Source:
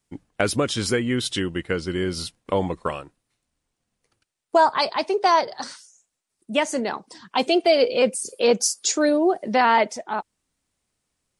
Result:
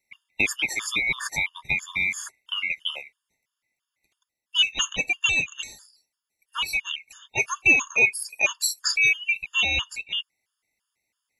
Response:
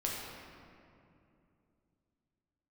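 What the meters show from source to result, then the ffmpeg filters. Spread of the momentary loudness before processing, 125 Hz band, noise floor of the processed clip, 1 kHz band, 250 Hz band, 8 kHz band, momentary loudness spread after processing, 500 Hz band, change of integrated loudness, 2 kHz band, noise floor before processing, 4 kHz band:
12 LU, -11.0 dB, -85 dBFS, -16.5 dB, -17.5 dB, -2.0 dB, 13 LU, -20.0 dB, -1.0 dB, +7.5 dB, -80 dBFS, +3.0 dB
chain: -af "afftfilt=real='real(if(lt(b,920),b+92*(1-2*mod(floor(b/92),2)),b),0)':imag='imag(if(lt(b,920),b+92*(1-2*mod(floor(b/92),2)),b),0)':win_size=2048:overlap=0.75,afftfilt=real='re*gt(sin(2*PI*3*pts/sr)*(1-2*mod(floor(b*sr/1024/910),2)),0)':imag='im*gt(sin(2*PI*3*pts/sr)*(1-2*mod(floor(b*sr/1024/910),2)),0)':win_size=1024:overlap=0.75"

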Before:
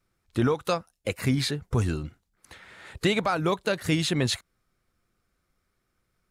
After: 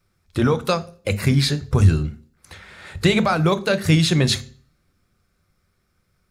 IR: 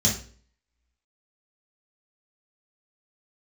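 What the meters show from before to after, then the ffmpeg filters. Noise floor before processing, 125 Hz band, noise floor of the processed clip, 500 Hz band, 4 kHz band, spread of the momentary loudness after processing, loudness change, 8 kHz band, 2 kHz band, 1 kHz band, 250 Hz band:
-76 dBFS, +10.5 dB, -69 dBFS, +5.5 dB, +7.0 dB, 8 LU, +7.5 dB, +6.0 dB, +6.0 dB, +5.5 dB, +7.0 dB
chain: -filter_complex "[0:a]asplit=2[a][b];[1:a]atrim=start_sample=2205,asetrate=43659,aresample=44100[c];[b][c]afir=irnorm=-1:irlink=0,volume=-22dB[d];[a][d]amix=inputs=2:normalize=0,volume=6dB"

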